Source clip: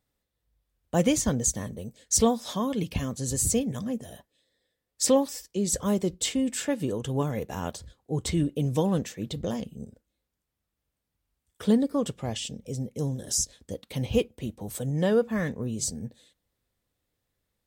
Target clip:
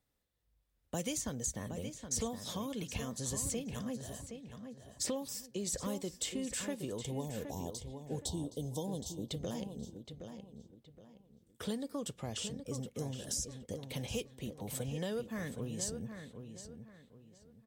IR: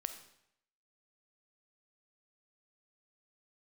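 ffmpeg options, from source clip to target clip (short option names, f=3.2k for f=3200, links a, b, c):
-filter_complex "[0:a]acrossover=split=550|3200|6900[a][b][c][d];[a]acompressor=threshold=-37dB:ratio=4[e];[b]acompressor=threshold=-43dB:ratio=4[f];[c]acompressor=threshold=-41dB:ratio=4[g];[d]acompressor=threshold=-38dB:ratio=4[h];[e][f][g][h]amix=inputs=4:normalize=0,asettb=1/sr,asplit=3[i][j][k];[i]atrim=end=7.034[l];[j]atrim=start=7.03:end=9.29,asetpts=PTS-STARTPTS,afade=t=in:d=0.004:c=qsin,afade=t=out:st=2.256:d=0.004:c=qsin,asuperstop=centerf=1800:order=12:qfactor=0.79[m];[k]atrim=start=9.286[n];[l][m]acrossfade=d=0.004:c1=hsin:c2=qsin[o];[o][n]acrossfade=d=0.004:c1=qsin:c2=hsin,asplit=2[p][q];[q]adelay=769,lowpass=f=4k:p=1,volume=-8dB,asplit=2[r][s];[s]adelay=769,lowpass=f=4k:p=1,volume=0.31,asplit=2[t][u];[u]adelay=769,lowpass=f=4k:p=1,volume=0.31,asplit=2[v][w];[w]adelay=769,lowpass=f=4k:p=1,volume=0.31[x];[p][r][t][v][x]amix=inputs=5:normalize=0,volume=-3dB"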